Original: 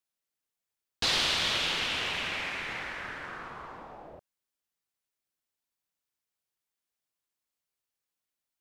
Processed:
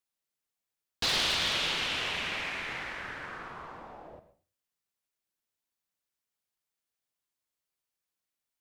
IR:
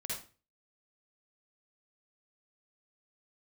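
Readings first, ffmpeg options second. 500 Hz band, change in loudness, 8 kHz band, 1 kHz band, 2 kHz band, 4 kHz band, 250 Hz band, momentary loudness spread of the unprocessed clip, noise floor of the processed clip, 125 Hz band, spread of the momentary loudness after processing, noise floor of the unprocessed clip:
−0.5 dB, −1.0 dB, −0.5 dB, −1.0 dB, −1.0 dB, −1.0 dB, −1.0 dB, 19 LU, below −85 dBFS, −0.5 dB, 19 LU, below −85 dBFS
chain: -filter_complex "[0:a]aeval=exprs='0.106*(abs(mod(val(0)/0.106+3,4)-2)-1)':channel_layout=same,asplit=2[link_01][link_02];[1:a]atrim=start_sample=2205,adelay=47[link_03];[link_02][link_03]afir=irnorm=-1:irlink=0,volume=-12.5dB[link_04];[link_01][link_04]amix=inputs=2:normalize=0,volume=-1dB"

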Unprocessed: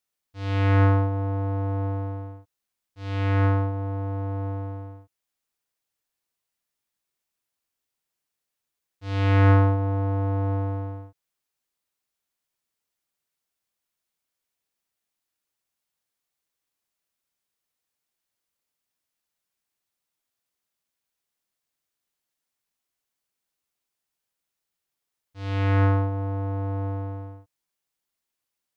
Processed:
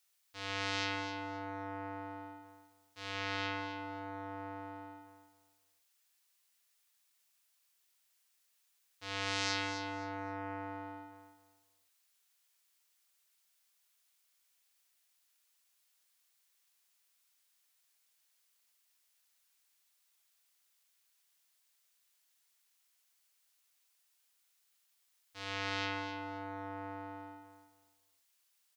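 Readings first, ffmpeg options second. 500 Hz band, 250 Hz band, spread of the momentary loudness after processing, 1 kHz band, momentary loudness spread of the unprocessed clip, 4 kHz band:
−14.0 dB, −15.0 dB, 18 LU, −8.5 dB, 18 LU, +4.0 dB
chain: -af "lowpass=frequency=2000:poles=1,aeval=exprs='0.282*(cos(1*acos(clip(val(0)/0.282,-1,1)))-cos(1*PI/2))+0.0631*(cos(5*acos(clip(val(0)/0.282,-1,1)))-cos(5*PI/2))':channel_layout=same,acompressor=threshold=-41dB:ratio=1.5,aderivative,aecho=1:1:262|524|786:0.355|0.0852|0.0204,volume=13.5dB"

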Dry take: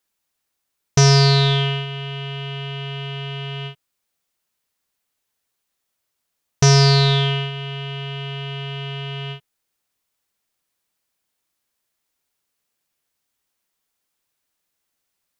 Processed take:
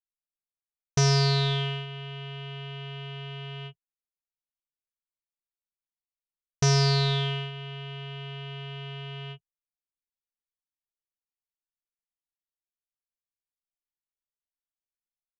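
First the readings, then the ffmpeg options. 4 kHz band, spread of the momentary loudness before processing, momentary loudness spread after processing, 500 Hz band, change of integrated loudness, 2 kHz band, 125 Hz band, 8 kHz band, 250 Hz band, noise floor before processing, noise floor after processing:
−9.0 dB, 16 LU, 16 LU, −9.0 dB, −9.0 dB, −9.0 dB, −9.0 dB, −9.0 dB, −9.0 dB, −78 dBFS, below −85 dBFS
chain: -af "anlmdn=6.31,volume=-9dB"

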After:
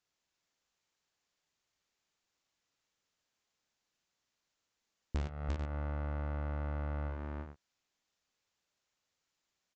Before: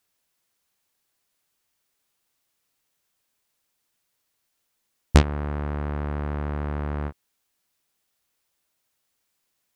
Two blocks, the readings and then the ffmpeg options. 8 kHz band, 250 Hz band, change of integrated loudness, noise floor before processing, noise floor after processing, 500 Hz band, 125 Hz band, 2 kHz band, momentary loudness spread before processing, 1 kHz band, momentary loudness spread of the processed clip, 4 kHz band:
−22.5 dB, −15.0 dB, −12.5 dB, −76 dBFS, below −85 dBFS, −12.5 dB, −11.5 dB, −13.5 dB, 10 LU, −12.5 dB, 5 LU, −20.0 dB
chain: -af "aresample=16000,volume=14.5dB,asoftclip=hard,volume=-14.5dB,aresample=44100,agate=range=-9dB:threshold=-18dB:ratio=16:detection=peak,aecho=1:1:56|75|344|436:0.668|0.15|0.596|0.251,acompressor=threshold=-34dB:ratio=12,volume=1dB"

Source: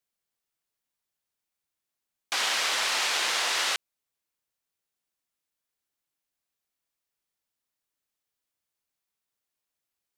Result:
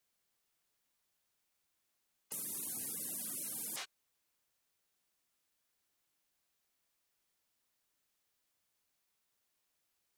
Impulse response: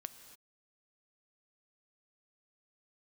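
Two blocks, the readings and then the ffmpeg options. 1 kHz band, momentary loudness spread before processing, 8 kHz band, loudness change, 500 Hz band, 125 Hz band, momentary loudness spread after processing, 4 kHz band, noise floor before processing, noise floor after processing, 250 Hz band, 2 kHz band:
−27.0 dB, 5 LU, −9.0 dB, −14.5 dB, −19.0 dB, can't be measured, 6 LU, −25.5 dB, below −85 dBFS, −82 dBFS, −3.0 dB, −27.5 dB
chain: -filter_complex "[1:a]atrim=start_sample=2205,afade=type=out:start_time=0.14:duration=0.01,atrim=end_sample=6615[link_01];[0:a][link_01]afir=irnorm=-1:irlink=0,afftfilt=real='re*lt(hypot(re,im),0.00891)':imag='im*lt(hypot(re,im),0.00891)':win_size=1024:overlap=0.75,volume=8.5dB"

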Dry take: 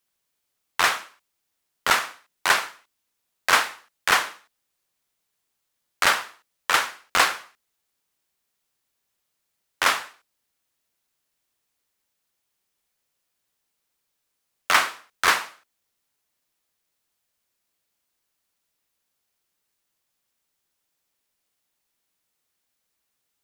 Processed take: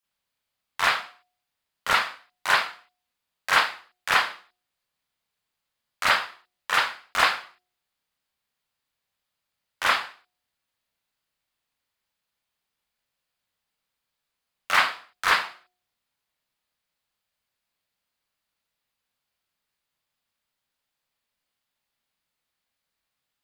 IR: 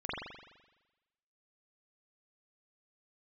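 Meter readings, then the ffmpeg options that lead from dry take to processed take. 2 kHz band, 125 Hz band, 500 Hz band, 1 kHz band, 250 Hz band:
−1.0 dB, −1.0 dB, −2.5 dB, −1.0 dB, −4.5 dB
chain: -filter_complex "[0:a]equalizer=frequency=360:width=1.7:gain=-6,bandreject=frequency=362.1:width_type=h:width=4,bandreject=frequency=724.2:width_type=h:width=4[link_01];[1:a]atrim=start_sample=2205,atrim=end_sample=3087,asetrate=61740,aresample=44100[link_02];[link_01][link_02]afir=irnorm=-1:irlink=0"

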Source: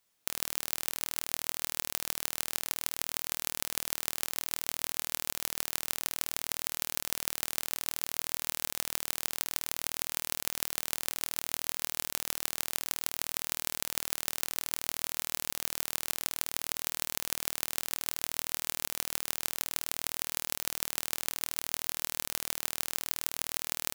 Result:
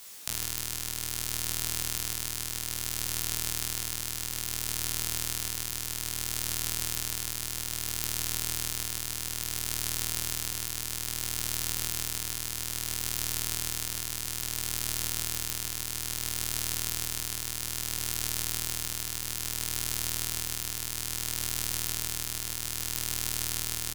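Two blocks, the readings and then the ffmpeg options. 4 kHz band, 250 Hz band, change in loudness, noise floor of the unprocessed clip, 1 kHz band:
+3.0 dB, +4.0 dB, +2.5 dB, −75 dBFS, −0.5 dB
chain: -filter_complex "[0:a]highshelf=frequency=8800:gain=-6.5,asplit=2[link_01][link_02];[link_02]aeval=exprs='0.891*sin(PI/2*4.47*val(0)/0.891)':channel_layout=same,volume=-6.5dB[link_03];[link_01][link_03]amix=inputs=2:normalize=0,aecho=1:1:36|79:0.376|0.398,acrossover=split=180[link_04][link_05];[link_05]acompressor=threshold=-41dB:ratio=6[link_06];[link_04][link_06]amix=inputs=2:normalize=0,highshelf=frequency=4200:gain=12,bandreject=frequency=660:width=15,asplit=2[link_07][link_08];[link_08]adelay=17,volume=-5dB[link_09];[link_07][link_09]amix=inputs=2:normalize=0,alimiter=limit=-14dB:level=0:latency=1,tremolo=f=0.6:d=0.3,volume=8.5dB"

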